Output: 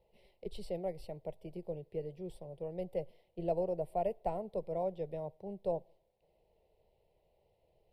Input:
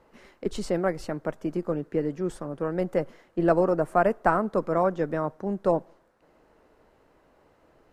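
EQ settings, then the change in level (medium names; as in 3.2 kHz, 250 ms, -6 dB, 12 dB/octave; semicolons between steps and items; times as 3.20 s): static phaser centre 660 Hz, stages 4; static phaser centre 2.9 kHz, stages 4; -7.0 dB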